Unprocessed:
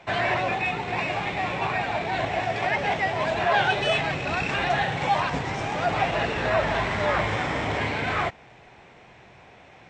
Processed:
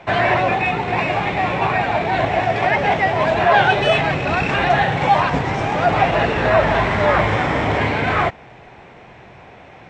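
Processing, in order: treble shelf 3.2 kHz -9 dB; trim +9 dB

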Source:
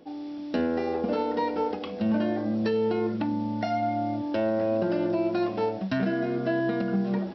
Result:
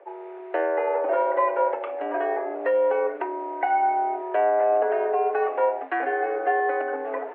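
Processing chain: mistuned SSB +76 Hz 390–2200 Hz; trim +6.5 dB

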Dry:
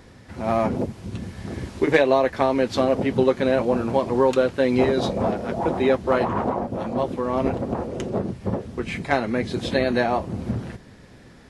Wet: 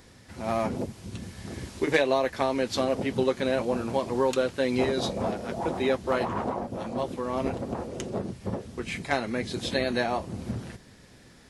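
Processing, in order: treble shelf 3.3 kHz +10.5 dB; trim -6.5 dB

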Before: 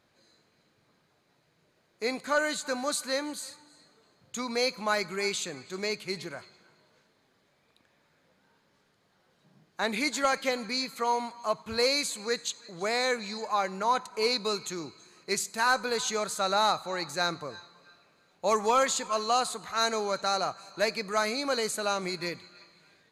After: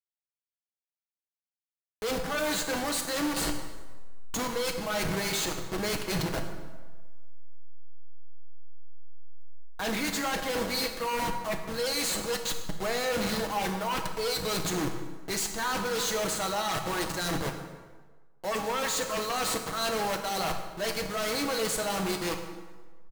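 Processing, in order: send-on-delta sampling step -33 dBFS; band-stop 2.4 kHz, Q 11; comb 6.2 ms, depth 48%; reverse; compression 16:1, threshold -35 dBFS, peak gain reduction 17 dB; reverse; sine folder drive 12 dB, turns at -23.5 dBFS; plate-style reverb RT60 1.4 s, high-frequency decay 0.7×, DRR 4.5 dB; trim -3.5 dB

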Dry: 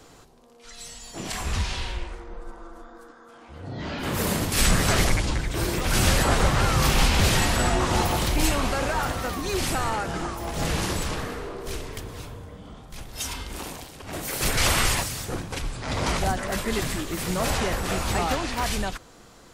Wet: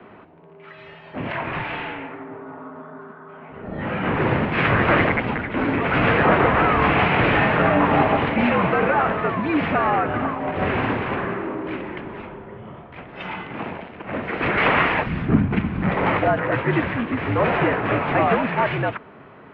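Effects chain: 15.06–15.89 s: resonant low shelf 400 Hz +11 dB, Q 1.5; mistuned SSB -75 Hz 190–2600 Hz; trim +8 dB

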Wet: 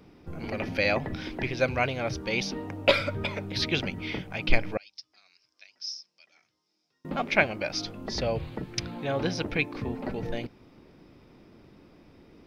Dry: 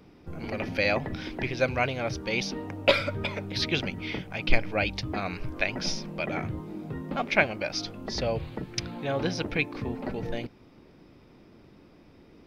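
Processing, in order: 4.77–7.05 s: band-pass filter 5.3 kHz, Q 9.5

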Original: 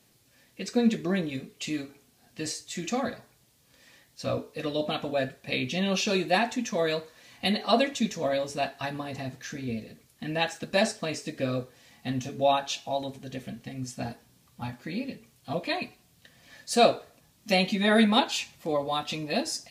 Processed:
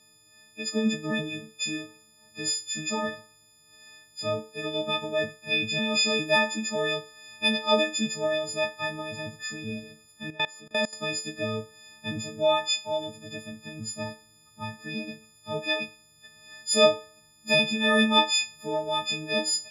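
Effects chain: partials quantised in pitch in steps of 6 st; distance through air 52 m; 10.30–10.93 s: level held to a coarse grid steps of 22 dB; trim -2.5 dB

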